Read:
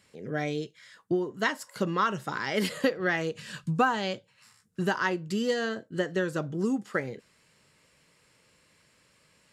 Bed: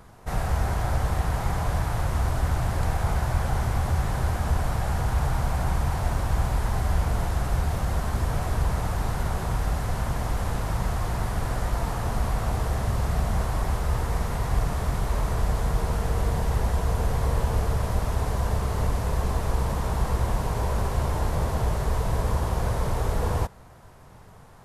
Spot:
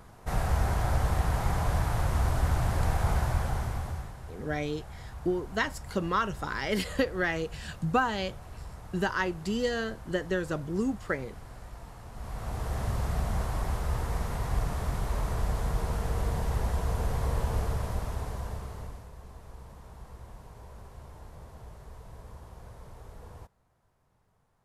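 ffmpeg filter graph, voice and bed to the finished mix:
-filter_complex "[0:a]adelay=4150,volume=-1.5dB[a];[1:a]volume=11.5dB,afade=t=out:st=3.17:d=0.99:silence=0.149624,afade=t=in:st=12.12:d=0.72:silence=0.211349,afade=t=out:st=17.6:d=1.5:silence=0.141254[b];[a][b]amix=inputs=2:normalize=0"

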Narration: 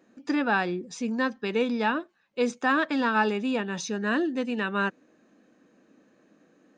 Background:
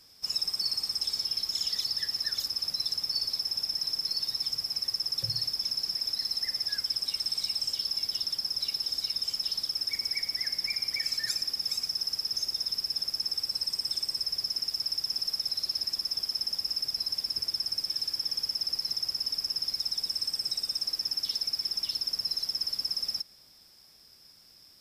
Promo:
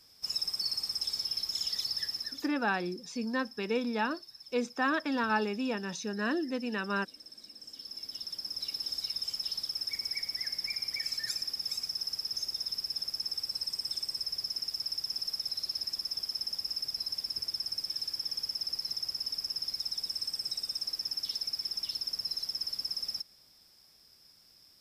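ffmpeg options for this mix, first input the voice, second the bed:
-filter_complex "[0:a]adelay=2150,volume=-5.5dB[a];[1:a]volume=12.5dB,afade=t=out:st=2.05:d=0.45:silence=0.149624,afade=t=in:st=7.57:d=1.34:silence=0.16788[b];[a][b]amix=inputs=2:normalize=0"

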